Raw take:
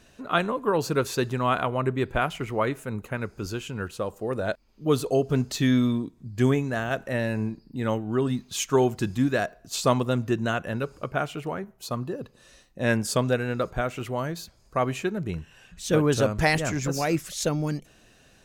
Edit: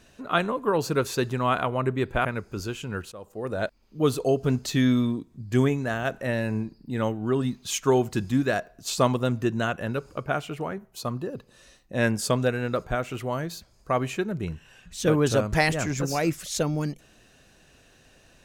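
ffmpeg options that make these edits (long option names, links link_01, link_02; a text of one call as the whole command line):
ffmpeg -i in.wav -filter_complex "[0:a]asplit=3[link_01][link_02][link_03];[link_01]atrim=end=2.252[link_04];[link_02]atrim=start=3.108:end=3.98,asetpts=PTS-STARTPTS,afade=type=out:start_time=0.868:duration=0.004:curve=hsin:silence=0.158489[link_05];[link_03]atrim=start=3.98,asetpts=PTS-STARTPTS,afade=type=in:duration=0.49:silence=0.158489[link_06];[link_05][link_06]concat=n=2:v=0:a=1[link_07];[link_04][link_07]acrossfade=duration=0.004:curve1=hsin:curve2=hsin" out.wav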